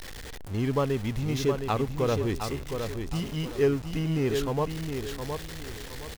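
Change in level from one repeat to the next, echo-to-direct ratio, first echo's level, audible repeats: −10.0 dB, −6.0 dB, −6.5 dB, 3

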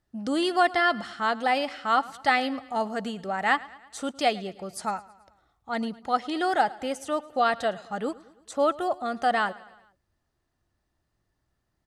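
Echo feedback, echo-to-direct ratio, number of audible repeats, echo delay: 55%, −19.0 dB, 3, 109 ms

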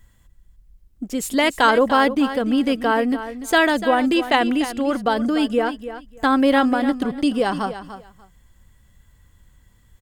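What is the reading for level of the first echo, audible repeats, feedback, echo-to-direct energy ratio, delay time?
−12.0 dB, 2, 18%, −12.0 dB, 294 ms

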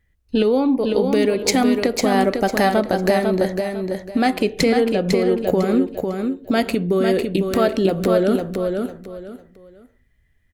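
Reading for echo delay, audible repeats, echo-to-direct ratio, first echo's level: 501 ms, 3, −4.5 dB, −5.0 dB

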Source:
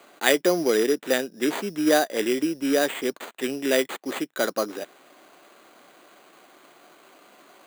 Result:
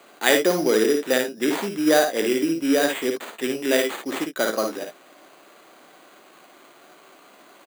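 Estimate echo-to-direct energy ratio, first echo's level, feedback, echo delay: −4.0 dB, −5.0 dB, repeats not evenly spaced, 55 ms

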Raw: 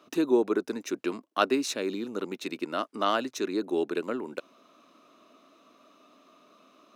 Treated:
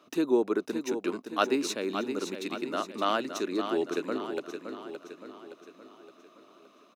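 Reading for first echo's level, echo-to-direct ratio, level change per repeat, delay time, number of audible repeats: −8.0 dB, −7.0 dB, −6.0 dB, 568 ms, 5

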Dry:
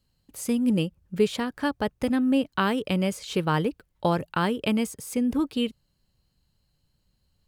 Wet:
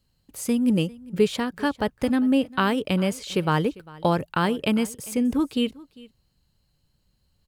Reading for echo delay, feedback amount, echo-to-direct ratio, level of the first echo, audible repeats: 399 ms, repeats not evenly spaced, −21.5 dB, −21.5 dB, 1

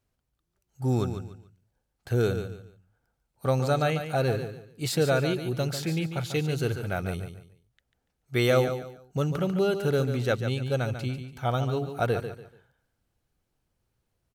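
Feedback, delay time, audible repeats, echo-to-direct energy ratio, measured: 28%, 144 ms, 3, −8.5 dB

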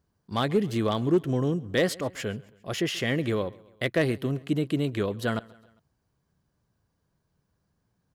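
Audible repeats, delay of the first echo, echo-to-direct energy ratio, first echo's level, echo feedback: 3, 134 ms, −21.5 dB, −23.0 dB, 52%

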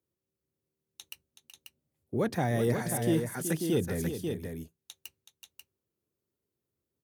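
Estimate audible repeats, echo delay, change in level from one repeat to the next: 2, 375 ms, repeats not evenly spaced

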